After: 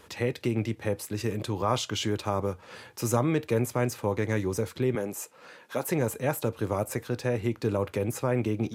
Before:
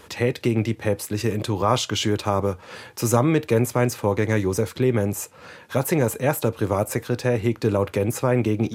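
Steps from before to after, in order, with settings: 4.95–5.89 s: high-pass 240 Hz 12 dB/octave; trim -6.5 dB

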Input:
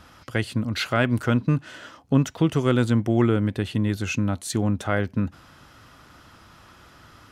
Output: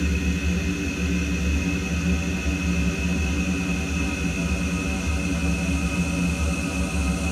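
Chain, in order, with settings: Paulstretch 29×, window 1.00 s, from 3.99 s; frequency shift -30 Hz; trim +1.5 dB

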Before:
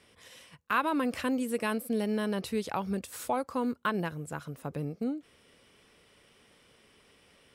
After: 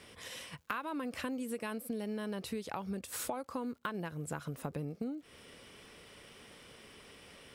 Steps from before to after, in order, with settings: compression 10:1, threshold -42 dBFS, peak gain reduction 19.5 dB; crackle 150 per s -65 dBFS; trim +6.5 dB

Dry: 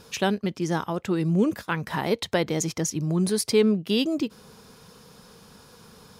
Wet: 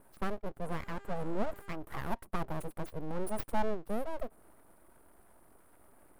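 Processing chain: 0.63–1.72 s: mains buzz 400 Hz, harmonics 19, -40 dBFS -2 dB/octave; Chebyshev band-stop 1.2–9.2 kHz, order 4; full-wave rectifier; trim -7.5 dB

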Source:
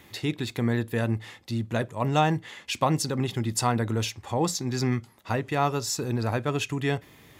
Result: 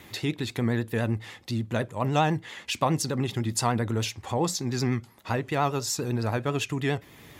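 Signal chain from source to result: in parallel at -0.5 dB: compression, threshold -38 dBFS, peak gain reduction 19.5 dB; on the sum: vibrato 10 Hz 62 cents; trim -2 dB

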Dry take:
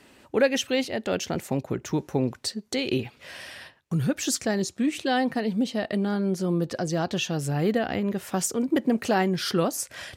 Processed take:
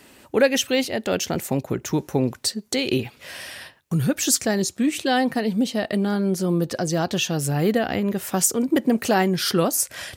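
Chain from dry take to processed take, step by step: treble shelf 9 kHz +11.5 dB; trim +3.5 dB

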